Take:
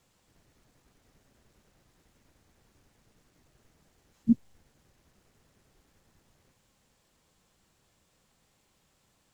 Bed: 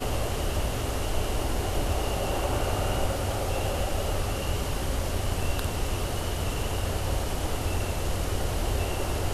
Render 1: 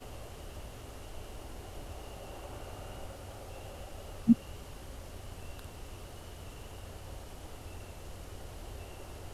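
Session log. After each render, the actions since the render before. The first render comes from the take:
mix in bed −17.5 dB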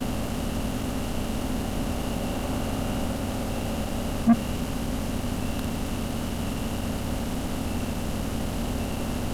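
compressor on every frequency bin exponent 0.6
leveller curve on the samples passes 3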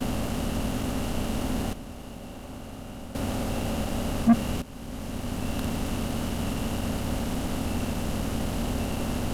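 0:01.73–0:03.15: clip gain −11.5 dB
0:04.62–0:05.64: fade in, from −15.5 dB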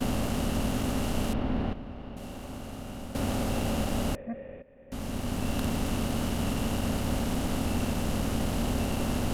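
0:01.33–0:02.17: high-frequency loss of the air 340 metres
0:04.15–0:04.92: formant resonators in series e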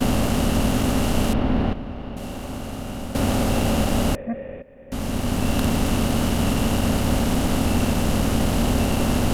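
level +8.5 dB

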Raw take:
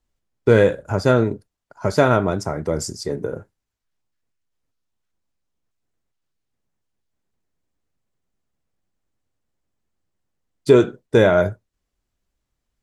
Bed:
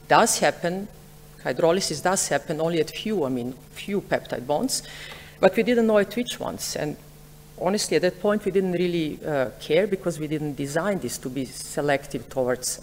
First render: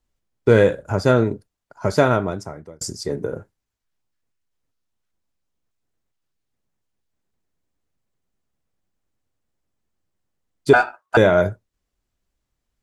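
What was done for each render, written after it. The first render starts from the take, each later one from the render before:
0:01.98–0:02.81: fade out
0:10.73–0:11.17: ring modulation 1,100 Hz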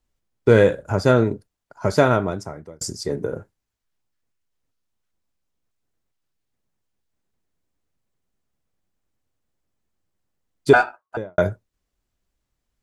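0:10.74–0:11.38: fade out and dull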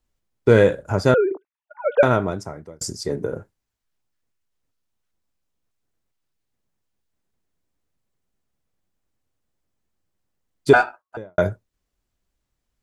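0:01.14–0:02.03: three sine waves on the formant tracks
0:11.02–0:11.42: expander for the loud parts, over −25 dBFS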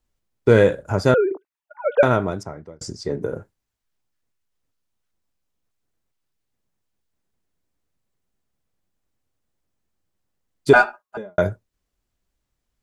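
0:02.43–0:03.22: high-frequency loss of the air 90 metres
0:10.75–0:11.38: comb filter 4.9 ms, depth 93%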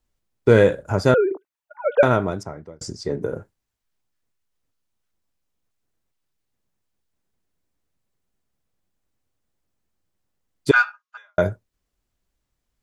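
0:10.71–0:11.37: elliptic band-pass filter 1,200–6,500 Hz, stop band 60 dB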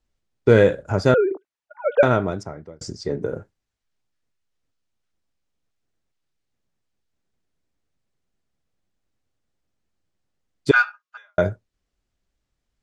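low-pass filter 7,300 Hz 12 dB per octave
parametric band 1,000 Hz −3 dB 0.36 octaves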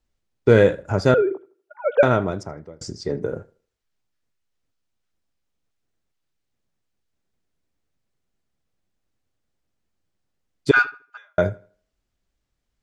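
tape delay 79 ms, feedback 33%, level −21 dB, low-pass 3,800 Hz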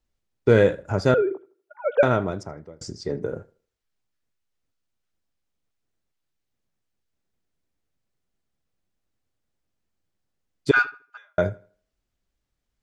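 level −2.5 dB

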